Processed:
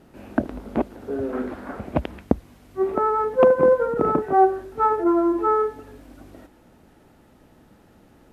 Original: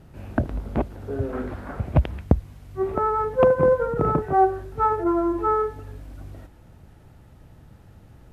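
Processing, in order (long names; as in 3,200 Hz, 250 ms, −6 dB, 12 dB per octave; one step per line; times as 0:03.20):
low shelf with overshoot 170 Hz −10.5 dB, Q 1.5
level +1 dB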